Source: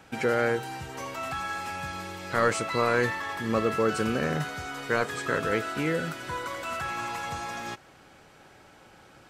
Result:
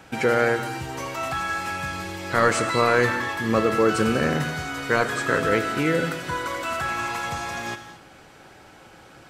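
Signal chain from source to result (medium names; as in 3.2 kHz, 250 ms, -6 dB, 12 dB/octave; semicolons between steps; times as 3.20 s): gated-style reverb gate 260 ms flat, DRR 9 dB; trim +5 dB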